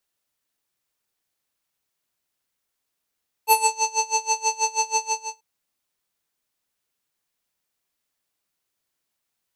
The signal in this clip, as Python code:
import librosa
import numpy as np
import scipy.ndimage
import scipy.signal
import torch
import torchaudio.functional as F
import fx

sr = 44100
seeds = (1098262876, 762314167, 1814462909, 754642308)

y = fx.sub_patch_tremolo(sr, seeds[0], note=81, wave='square', wave2='sine', interval_st=-12, detune_cents=16, level2_db=-9.5, sub_db=-29, noise_db=-15, kind='lowpass', cutoff_hz=6400.0, q=6.5, env_oct=1.0, env_decay_s=0.27, env_sustain_pct=0, attack_ms=98.0, decay_s=0.11, sustain_db=-14.0, release_s=0.38, note_s=1.56, lfo_hz=6.2, tremolo_db=23.0)